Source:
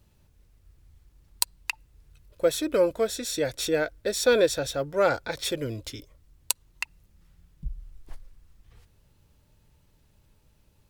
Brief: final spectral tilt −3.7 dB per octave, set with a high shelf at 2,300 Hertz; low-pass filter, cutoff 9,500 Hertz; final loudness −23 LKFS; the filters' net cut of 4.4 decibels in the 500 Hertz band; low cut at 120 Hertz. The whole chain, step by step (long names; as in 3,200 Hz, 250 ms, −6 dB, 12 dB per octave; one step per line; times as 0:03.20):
high-pass filter 120 Hz
low-pass filter 9,500 Hz
parametric band 500 Hz −4.5 dB
high-shelf EQ 2,300 Hz −6.5 dB
level +8 dB